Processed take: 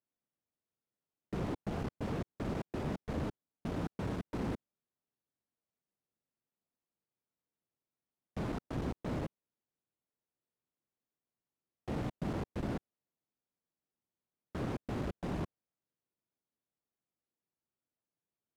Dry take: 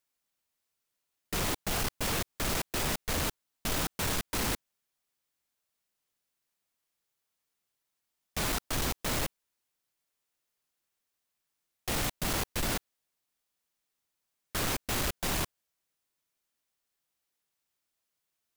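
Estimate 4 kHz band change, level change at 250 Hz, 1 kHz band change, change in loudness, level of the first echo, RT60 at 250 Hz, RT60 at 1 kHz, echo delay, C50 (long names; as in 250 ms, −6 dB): −20.0 dB, +0.5 dB, −8.0 dB, −7.5 dB, no echo audible, no reverb audible, no reverb audible, no echo audible, no reverb audible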